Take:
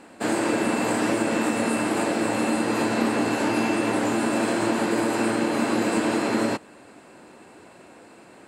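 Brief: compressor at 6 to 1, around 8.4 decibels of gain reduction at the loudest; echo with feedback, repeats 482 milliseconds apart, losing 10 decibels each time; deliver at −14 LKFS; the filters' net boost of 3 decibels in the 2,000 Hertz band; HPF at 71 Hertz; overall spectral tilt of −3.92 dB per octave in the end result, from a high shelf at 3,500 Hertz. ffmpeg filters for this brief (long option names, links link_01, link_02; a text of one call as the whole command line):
ffmpeg -i in.wav -af "highpass=71,equalizer=frequency=2000:width_type=o:gain=6.5,highshelf=frequency=3500:gain=-8.5,acompressor=threshold=-28dB:ratio=6,aecho=1:1:482|964|1446|1928:0.316|0.101|0.0324|0.0104,volume=17dB" out.wav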